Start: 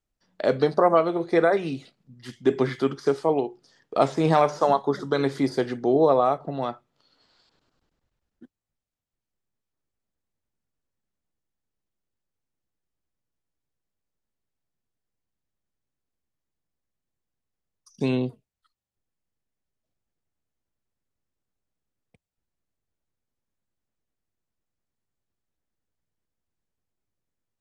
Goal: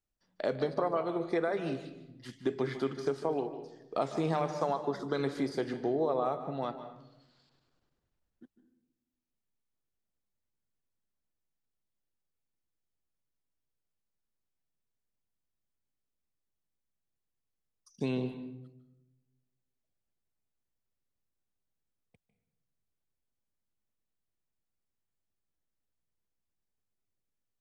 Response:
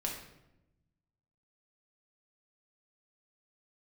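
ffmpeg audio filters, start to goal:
-filter_complex "[0:a]acompressor=threshold=-20dB:ratio=6,asplit=2[a][b];[1:a]atrim=start_sample=2205,highshelf=f=7.7k:g=-5.5,adelay=150[c];[b][c]afir=irnorm=-1:irlink=0,volume=-12dB[d];[a][d]amix=inputs=2:normalize=0,volume=-6.5dB"

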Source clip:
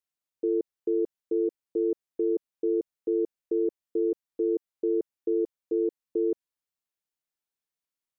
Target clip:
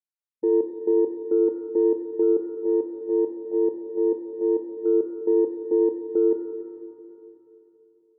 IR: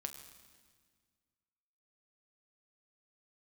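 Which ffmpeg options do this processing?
-filter_complex "[0:a]asplit=3[a][b][c];[a]afade=t=out:st=2.5:d=0.02[d];[b]agate=range=-16dB:threshold=-25dB:ratio=16:detection=peak,afade=t=in:st=2.5:d=0.02,afade=t=out:st=4.85:d=0.02[e];[c]afade=t=in:st=4.85:d=0.02[f];[d][e][f]amix=inputs=3:normalize=0,afwtdn=0.00891[g];[1:a]atrim=start_sample=2205,asetrate=23373,aresample=44100[h];[g][h]afir=irnorm=-1:irlink=0,volume=3.5dB"

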